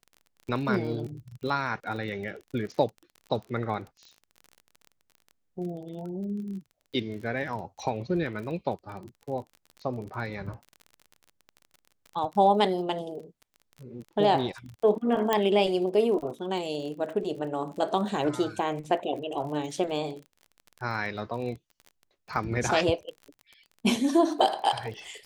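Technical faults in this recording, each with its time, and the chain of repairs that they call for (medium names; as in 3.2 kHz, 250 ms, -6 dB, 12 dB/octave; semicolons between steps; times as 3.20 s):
crackle 30 per s -37 dBFS
15.33 s: pop -10 dBFS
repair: de-click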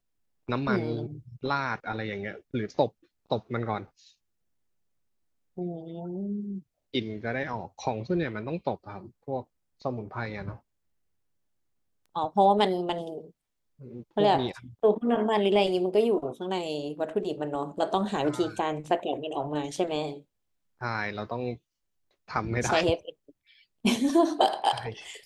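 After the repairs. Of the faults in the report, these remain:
nothing left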